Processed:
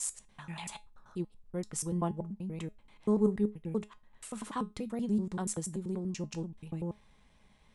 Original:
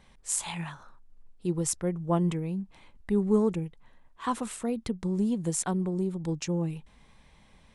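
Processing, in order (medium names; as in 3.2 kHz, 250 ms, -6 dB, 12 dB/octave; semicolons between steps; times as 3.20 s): slices played last to first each 96 ms, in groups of 4; feedback comb 210 Hz, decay 0.22 s, harmonics all, mix 60%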